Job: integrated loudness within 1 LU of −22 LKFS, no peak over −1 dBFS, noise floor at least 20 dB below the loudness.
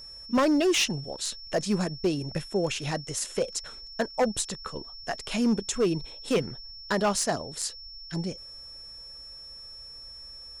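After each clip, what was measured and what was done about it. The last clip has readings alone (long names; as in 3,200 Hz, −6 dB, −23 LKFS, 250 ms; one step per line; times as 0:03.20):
share of clipped samples 0.9%; peaks flattened at −18.5 dBFS; interfering tone 5,400 Hz; level of the tone −42 dBFS; integrated loudness −28.5 LKFS; sample peak −18.5 dBFS; target loudness −22.0 LKFS
→ clipped peaks rebuilt −18.5 dBFS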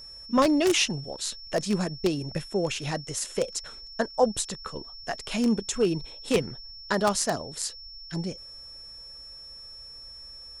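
share of clipped samples 0.0%; interfering tone 5,400 Hz; level of the tone −42 dBFS
→ notch filter 5,400 Hz, Q 30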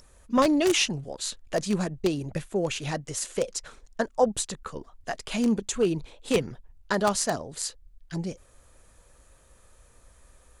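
interfering tone none found; integrated loudness −28.0 LKFS; sample peak −9.5 dBFS; target loudness −22.0 LKFS
→ level +6 dB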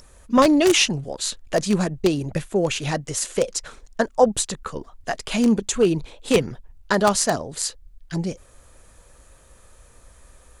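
integrated loudness −22.0 LKFS; sample peak −3.5 dBFS; background noise floor −52 dBFS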